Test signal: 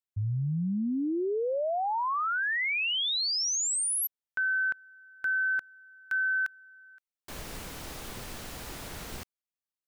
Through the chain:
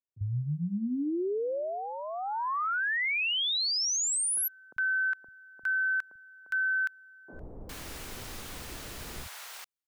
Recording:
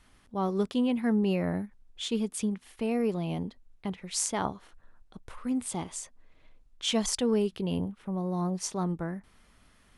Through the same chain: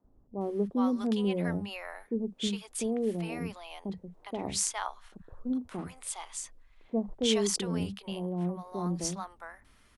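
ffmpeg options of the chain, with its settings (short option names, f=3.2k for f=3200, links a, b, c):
-filter_complex "[0:a]acrossover=split=170|720[a][b][c];[a]adelay=40[d];[c]adelay=410[e];[d][b][e]amix=inputs=3:normalize=0"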